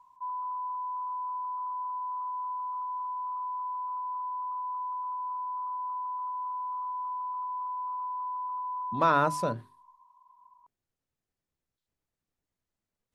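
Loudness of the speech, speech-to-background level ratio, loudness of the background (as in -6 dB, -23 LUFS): -27.5 LUFS, 7.0 dB, -34.5 LUFS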